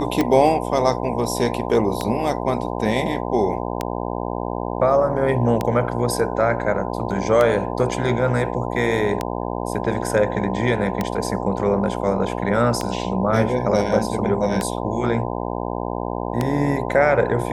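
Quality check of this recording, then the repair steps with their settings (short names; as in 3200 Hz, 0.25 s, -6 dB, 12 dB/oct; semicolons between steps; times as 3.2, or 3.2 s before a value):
buzz 60 Hz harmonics 17 -26 dBFS
tick 33 1/3 rpm -7 dBFS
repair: de-click; de-hum 60 Hz, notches 17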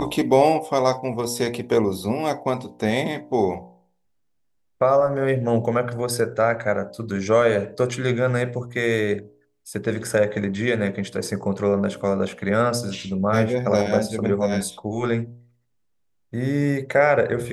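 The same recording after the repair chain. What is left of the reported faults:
none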